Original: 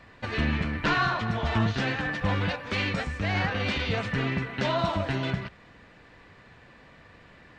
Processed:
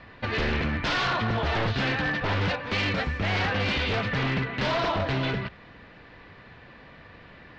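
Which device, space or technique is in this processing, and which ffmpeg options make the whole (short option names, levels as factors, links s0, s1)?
synthesiser wavefolder: -af "aeval=exprs='0.0596*(abs(mod(val(0)/0.0596+3,4)-2)-1)':c=same,lowpass=f=4900:w=0.5412,lowpass=f=4900:w=1.3066,volume=1.58"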